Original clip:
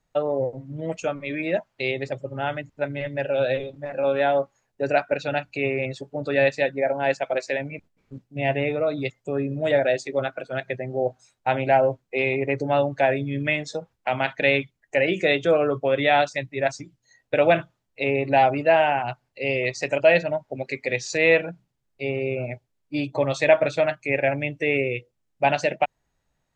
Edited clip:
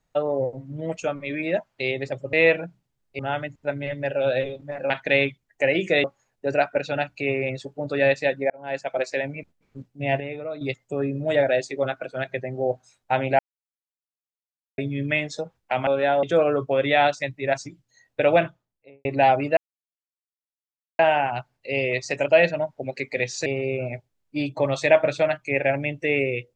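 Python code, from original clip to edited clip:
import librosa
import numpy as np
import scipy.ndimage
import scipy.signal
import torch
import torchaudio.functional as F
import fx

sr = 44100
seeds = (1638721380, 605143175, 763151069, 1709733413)

y = fx.studio_fade_out(x, sr, start_s=17.42, length_s=0.77)
y = fx.edit(y, sr, fx.swap(start_s=4.04, length_s=0.36, other_s=14.23, other_length_s=1.14),
    fx.fade_in_span(start_s=6.86, length_s=0.49),
    fx.clip_gain(start_s=8.56, length_s=0.41, db=-8.5),
    fx.silence(start_s=11.75, length_s=1.39),
    fx.insert_silence(at_s=18.71, length_s=1.42),
    fx.move(start_s=21.18, length_s=0.86, to_s=2.33), tone=tone)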